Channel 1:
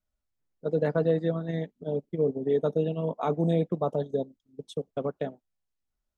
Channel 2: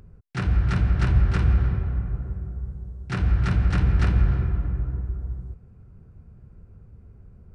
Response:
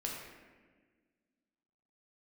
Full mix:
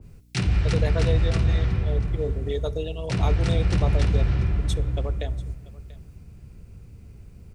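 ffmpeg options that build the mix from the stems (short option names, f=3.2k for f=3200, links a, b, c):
-filter_complex "[0:a]highpass=f=570:p=1,volume=-0.5dB,asplit=3[a][b][c];[b]volume=-17.5dB[d];[c]volume=-21dB[e];[1:a]acrossover=split=410|1200[f][g][h];[f]acompressor=threshold=-19dB:ratio=4[i];[g]acompressor=threshold=-41dB:ratio=4[j];[h]acompressor=threshold=-46dB:ratio=4[k];[i][j][k]amix=inputs=3:normalize=0,volume=1.5dB,asplit=3[l][m][n];[m]volume=-16.5dB[o];[n]volume=-16.5dB[p];[2:a]atrim=start_sample=2205[q];[d][o]amix=inputs=2:normalize=0[r];[r][q]afir=irnorm=-1:irlink=0[s];[e][p]amix=inputs=2:normalize=0,aecho=0:1:688:1[t];[a][l][s][t]amix=inputs=4:normalize=0,aeval=exprs='val(0)+0.002*(sin(2*PI*60*n/s)+sin(2*PI*2*60*n/s)/2+sin(2*PI*3*60*n/s)/3+sin(2*PI*4*60*n/s)/4+sin(2*PI*5*60*n/s)/5)':c=same,aexciter=amount=3.5:drive=8.3:freq=2.1k,adynamicequalizer=threshold=0.00501:dfrequency=1700:dqfactor=0.7:tfrequency=1700:tqfactor=0.7:attack=5:release=100:ratio=0.375:range=3:mode=cutabove:tftype=highshelf"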